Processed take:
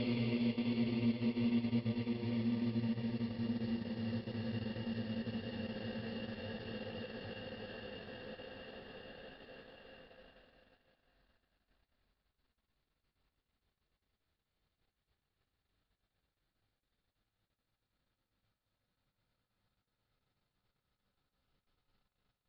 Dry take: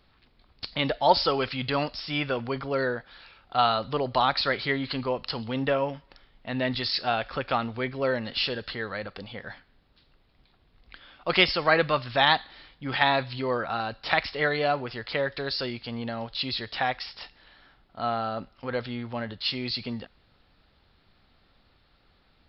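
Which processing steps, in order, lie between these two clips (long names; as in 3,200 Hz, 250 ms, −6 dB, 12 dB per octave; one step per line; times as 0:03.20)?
extreme stretch with random phases 47×, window 0.25 s, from 0:19.90
downward expander −50 dBFS
transient designer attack −3 dB, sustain −8 dB
level −2.5 dB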